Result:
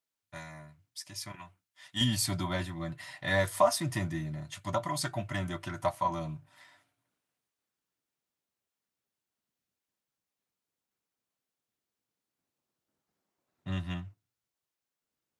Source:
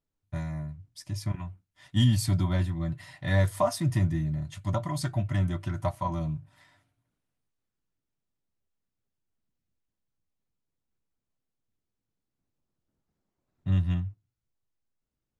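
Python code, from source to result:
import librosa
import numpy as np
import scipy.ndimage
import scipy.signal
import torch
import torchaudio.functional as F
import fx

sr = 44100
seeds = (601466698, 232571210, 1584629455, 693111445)

y = fx.highpass(x, sr, hz=fx.steps((0.0, 1400.0), (2.01, 530.0)), slope=6)
y = y * 10.0 ** (3.5 / 20.0)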